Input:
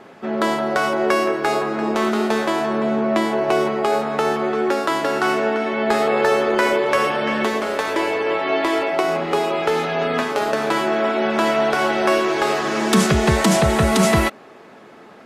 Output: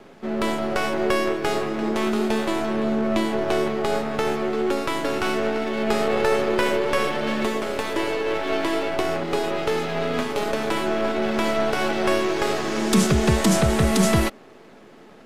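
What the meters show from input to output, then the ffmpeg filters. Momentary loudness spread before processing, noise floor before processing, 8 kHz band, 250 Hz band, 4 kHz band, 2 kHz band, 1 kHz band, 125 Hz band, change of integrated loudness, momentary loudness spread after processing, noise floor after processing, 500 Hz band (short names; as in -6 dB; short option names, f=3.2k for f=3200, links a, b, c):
5 LU, -44 dBFS, -2.0 dB, -2.0 dB, -2.5 dB, -5.0 dB, -6.0 dB, -1.5 dB, -3.5 dB, 6 LU, -47 dBFS, -4.0 dB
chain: -filter_complex "[0:a]acrossover=split=520|4200[a][b][c];[b]aeval=exprs='max(val(0),0)':c=same[d];[a][d][c]amix=inputs=3:normalize=0,volume=-1.5dB"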